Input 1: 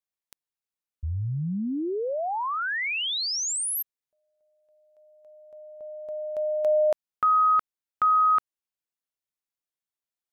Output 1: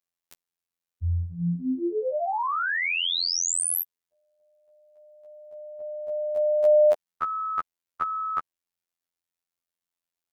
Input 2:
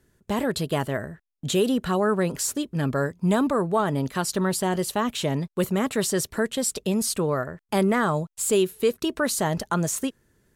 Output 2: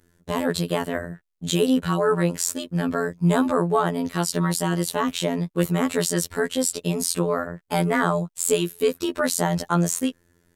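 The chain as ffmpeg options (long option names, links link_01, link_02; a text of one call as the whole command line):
ffmpeg -i in.wav -af "afftfilt=real='hypot(re,im)*cos(PI*b)':imag='0':win_size=2048:overlap=0.75,volume=5dB" out.wav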